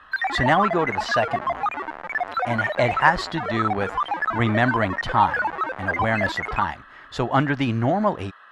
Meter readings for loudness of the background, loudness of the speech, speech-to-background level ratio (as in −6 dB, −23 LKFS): −26.0 LKFS, −23.5 LKFS, 2.5 dB